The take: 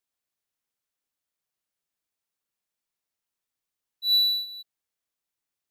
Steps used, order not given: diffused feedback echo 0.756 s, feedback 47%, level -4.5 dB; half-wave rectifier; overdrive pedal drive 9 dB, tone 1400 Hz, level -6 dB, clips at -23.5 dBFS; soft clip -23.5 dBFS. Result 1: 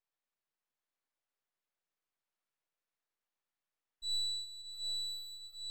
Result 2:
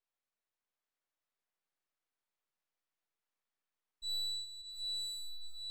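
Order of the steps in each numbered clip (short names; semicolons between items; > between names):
diffused feedback echo > half-wave rectifier > overdrive pedal > soft clip; half-wave rectifier > diffused feedback echo > soft clip > overdrive pedal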